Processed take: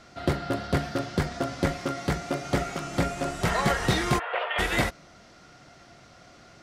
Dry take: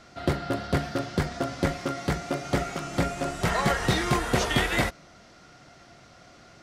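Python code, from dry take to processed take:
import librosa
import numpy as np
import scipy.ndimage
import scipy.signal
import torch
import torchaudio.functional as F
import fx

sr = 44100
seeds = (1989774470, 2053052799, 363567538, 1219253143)

y = fx.ellip_bandpass(x, sr, low_hz=530.0, high_hz=2900.0, order=3, stop_db=40, at=(4.18, 4.58), fade=0.02)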